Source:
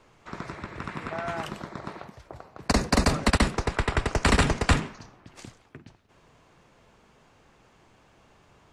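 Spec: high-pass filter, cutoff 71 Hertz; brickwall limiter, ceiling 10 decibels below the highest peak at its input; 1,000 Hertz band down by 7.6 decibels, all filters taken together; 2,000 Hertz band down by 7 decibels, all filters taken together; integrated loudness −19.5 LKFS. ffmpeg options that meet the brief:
ffmpeg -i in.wav -af "highpass=71,equalizer=frequency=1000:width_type=o:gain=-8.5,equalizer=frequency=2000:width_type=o:gain=-6,volume=14.5dB,alimiter=limit=-5dB:level=0:latency=1" out.wav

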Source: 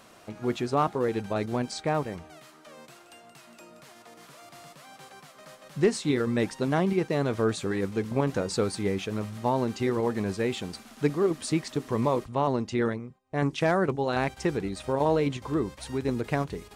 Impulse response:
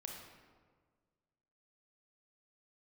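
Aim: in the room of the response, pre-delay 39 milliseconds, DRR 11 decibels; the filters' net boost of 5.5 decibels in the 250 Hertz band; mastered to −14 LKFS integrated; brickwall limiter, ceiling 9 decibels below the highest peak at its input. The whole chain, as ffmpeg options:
-filter_complex "[0:a]equalizer=frequency=250:width_type=o:gain=7,alimiter=limit=-18dB:level=0:latency=1,asplit=2[link_01][link_02];[1:a]atrim=start_sample=2205,adelay=39[link_03];[link_02][link_03]afir=irnorm=-1:irlink=0,volume=-8dB[link_04];[link_01][link_04]amix=inputs=2:normalize=0,volume=14.5dB"

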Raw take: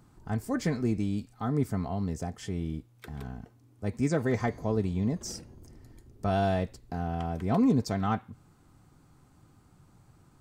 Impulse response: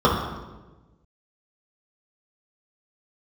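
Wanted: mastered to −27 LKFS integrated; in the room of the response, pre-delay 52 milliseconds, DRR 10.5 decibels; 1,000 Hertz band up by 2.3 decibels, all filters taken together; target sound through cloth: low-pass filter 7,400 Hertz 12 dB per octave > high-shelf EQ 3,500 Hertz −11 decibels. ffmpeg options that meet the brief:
-filter_complex "[0:a]equalizer=frequency=1000:width_type=o:gain=4.5,asplit=2[link_01][link_02];[1:a]atrim=start_sample=2205,adelay=52[link_03];[link_02][link_03]afir=irnorm=-1:irlink=0,volume=-33dB[link_04];[link_01][link_04]amix=inputs=2:normalize=0,lowpass=7400,highshelf=frequency=3500:gain=-11,volume=2.5dB"

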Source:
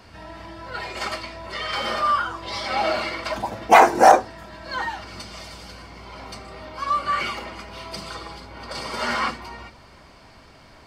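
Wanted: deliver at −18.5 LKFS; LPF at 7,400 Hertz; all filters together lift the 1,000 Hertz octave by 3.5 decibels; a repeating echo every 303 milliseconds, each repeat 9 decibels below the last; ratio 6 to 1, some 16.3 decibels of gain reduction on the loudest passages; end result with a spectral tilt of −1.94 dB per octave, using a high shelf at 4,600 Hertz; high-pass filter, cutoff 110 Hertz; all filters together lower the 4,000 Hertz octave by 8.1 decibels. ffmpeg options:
ffmpeg -i in.wav -af "highpass=110,lowpass=7400,equalizer=frequency=1000:width_type=o:gain=5.5,equalizer=frequency=4000:width_type=o:gain=-8,highshelf=frequency=4600:gain=-6.5,acompressor=threshold=-22dB:ratio=6,aecho=1:1:303|606|909|1212:0.355|0.124|0.0435|0.0152,volume=10dB" out.wav

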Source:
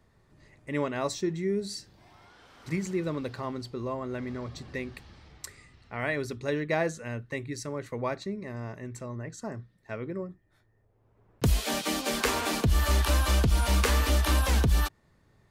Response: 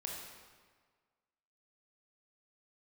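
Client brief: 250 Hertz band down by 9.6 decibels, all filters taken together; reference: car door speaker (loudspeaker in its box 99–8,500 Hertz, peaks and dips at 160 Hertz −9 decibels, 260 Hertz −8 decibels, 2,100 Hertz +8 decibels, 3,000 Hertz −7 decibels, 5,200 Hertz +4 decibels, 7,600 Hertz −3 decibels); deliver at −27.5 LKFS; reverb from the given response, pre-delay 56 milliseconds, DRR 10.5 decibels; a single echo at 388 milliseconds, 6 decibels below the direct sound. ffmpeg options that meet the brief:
-filter_complex "[0:a]equalizer=frequency=250:width_type=o:gain=-8,aecho=1:1:388:0.501,asplit=2[link_01][link_02];[1:a]atrim=start_sample=2205,adelay=56[link_03];[link_02][link_03]afir=irnorm=-1:irlink=0,volume=-10dB[link_04];[link_01][link_04]amix=inputs=2:normalize=0,highpass=99,equalizer=frequency=160:width_type=q:width=4:gain=-9,equalizer=frequency=260:width_type=q:width=4:gain=-8,equalizer=frequency=2100:width_type=q:width=4:gain=8,equalizer=frequency=3000:width_type=q:width=4:gain=-7,equalizer=frequency=5200:width_type=q:width=4:gain=4,equalizer=frequency=7600:width_type=q:width=4:gain=-3,lowpass=frequency=8500:width=0.5412,lowpass=frequency=8500:width=1.3066,volume=4dB"

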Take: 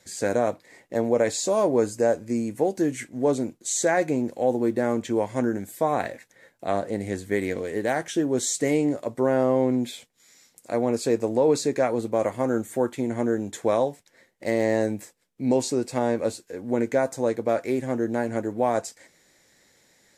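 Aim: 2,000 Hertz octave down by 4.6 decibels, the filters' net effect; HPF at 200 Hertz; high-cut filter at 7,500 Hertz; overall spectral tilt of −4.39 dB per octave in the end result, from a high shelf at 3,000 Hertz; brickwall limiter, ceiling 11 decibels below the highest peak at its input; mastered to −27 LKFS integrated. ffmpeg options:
ffmpeg -i in.wav -af "highpass=200,lowpass=7500,equalizer=frequency=2000:width_type=o:gain=-3.5,highshelf=frequency=3000:gain=-7,volume=4.5dB,alimiter=limit=-16.5dB:level=0:latency=1" out.wav

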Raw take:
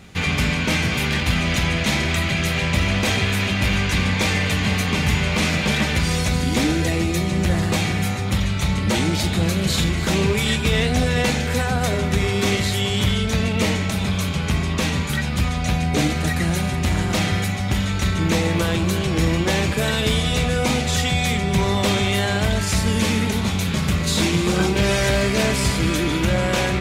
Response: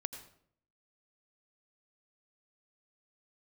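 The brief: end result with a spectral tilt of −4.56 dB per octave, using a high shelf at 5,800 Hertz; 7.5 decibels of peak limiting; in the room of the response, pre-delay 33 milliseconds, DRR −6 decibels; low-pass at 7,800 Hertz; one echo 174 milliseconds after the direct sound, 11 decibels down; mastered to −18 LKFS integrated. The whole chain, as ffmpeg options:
-filter_complex "[0:a]lowpass=7800,highshelf=frequency=5800:gain=4,alimiter=limit=-13dB:level=0:latency=1,aecho=1:1:174:0.282,asplit=2[link_01][link_02];[1:a]atrim=start_sample=2205,adelay=33[link_03];[link_02][link_03]afir=irnorm=-1:irlink=0,volume=6.5dB[link_04];[link_01][link_04]amix=inputs=2:normalize=0,volume=-3dB"

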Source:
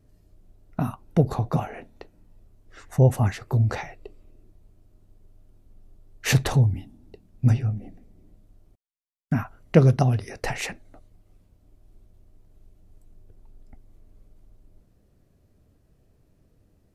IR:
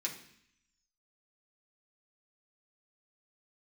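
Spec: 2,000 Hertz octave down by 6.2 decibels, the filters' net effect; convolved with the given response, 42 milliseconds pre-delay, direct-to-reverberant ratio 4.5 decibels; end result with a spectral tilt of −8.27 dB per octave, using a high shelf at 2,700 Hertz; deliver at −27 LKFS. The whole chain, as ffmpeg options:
-filter_complex "[0:a]equalizer=frequency=2000:width_type=o:gain=-4.5,highshelf=frequency=2700:gain=-7.5,asplit=2[link_01][link_02];[1:a]atrim=start_sample=2205,adelay=42[link_03];[link_02][link_03]afir=irnorm=-1:irlink=0,volume=-6dB[link_04];[link_01][link_04]amix=inputs=2:normalize=0,volume=-3dB"

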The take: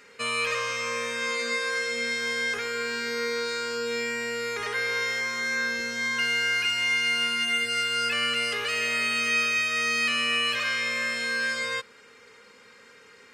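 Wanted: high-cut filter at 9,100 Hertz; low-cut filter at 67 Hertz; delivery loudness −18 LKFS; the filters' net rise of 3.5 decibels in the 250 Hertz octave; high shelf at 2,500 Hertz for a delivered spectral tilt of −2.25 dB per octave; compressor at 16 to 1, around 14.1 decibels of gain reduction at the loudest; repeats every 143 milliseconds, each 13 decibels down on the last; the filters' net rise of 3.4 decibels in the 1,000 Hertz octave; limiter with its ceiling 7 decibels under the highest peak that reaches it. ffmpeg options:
ffmpeg -i in.wav -af "highpass=67,lowpass=9100,equalizer=frequency=250:width_type=o:gain=3.5,equalizer=frequency=1000:width_type=o:gain=6.5,highshelf=frequency=2500:gain=-7.5,acompressor=threshold=-38dB:ratio=16,alimiter=level_in=12dB:limit=-24dB:level=0:latency=1,volume=-12dB,aecho=1:1:143|286|429:0.224|0.0493|0.0108,volume=25dB" out.wav

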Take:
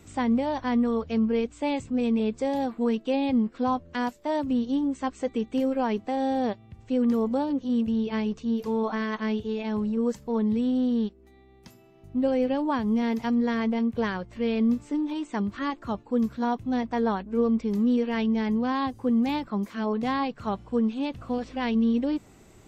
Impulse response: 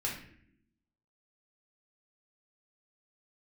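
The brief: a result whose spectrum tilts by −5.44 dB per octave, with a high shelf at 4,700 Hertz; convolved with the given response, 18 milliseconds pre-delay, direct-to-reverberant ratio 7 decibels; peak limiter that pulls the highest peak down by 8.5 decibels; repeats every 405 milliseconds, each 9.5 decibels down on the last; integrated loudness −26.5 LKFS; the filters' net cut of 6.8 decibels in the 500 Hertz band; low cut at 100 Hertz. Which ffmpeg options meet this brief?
-filter_complex "[0:a]highpass=100,equalizer=frequency=500:width_type=o:gain=-7.5,highshelf=frequency=4700:gain=-4,alimiter=level_in=2.5dB:limit=-24dB:level=0:latency=1,volume=-2.5dB,aecho=1:1:405|810|1215|1620:0.335|0.111|0.0365|0.012,asplit=2[link_01][link_02];[1:a]atrim=start_sample=2205,adelay=18[link_03];[link_02][link_03]afir=irnorm=-1:irlink=0,volume=-11dB[link_04];[link_01][link_04]amix=inputs=2:normalize=0,volume=5.5dB"

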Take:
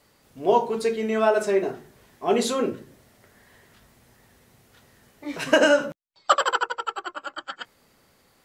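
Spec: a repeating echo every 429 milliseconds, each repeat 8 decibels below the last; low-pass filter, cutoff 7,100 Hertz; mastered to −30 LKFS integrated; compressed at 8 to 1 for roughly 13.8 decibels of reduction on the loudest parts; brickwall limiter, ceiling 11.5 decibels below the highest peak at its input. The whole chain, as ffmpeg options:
ffmpeg -i in.wav -af "lowpass=7100,acompressor=threshold=-28dB:ratio=8,alimiter=level_in=2dB:limit=-24dB:level=0:latency=1,volume=-2dB,aecho=1:1:429|858|1287|1716|2145:0.398|0.159|0.0637|0.0255|0.0102,volume=7dB" out.wav

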